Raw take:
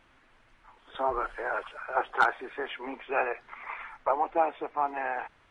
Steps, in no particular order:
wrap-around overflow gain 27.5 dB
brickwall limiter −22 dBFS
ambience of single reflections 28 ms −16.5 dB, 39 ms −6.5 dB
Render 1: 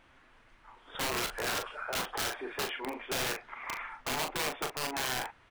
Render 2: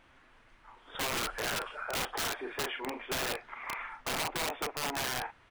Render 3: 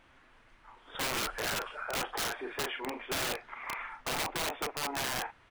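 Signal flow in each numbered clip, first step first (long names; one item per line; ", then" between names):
brickwall limiter, then wrap-around overflow, then ambience of single reflections
ambience of single reflections, then brickwall limiter, then wrap-around overflow
brickwall limiter, then ambience of single reflections, then wrap-around overflow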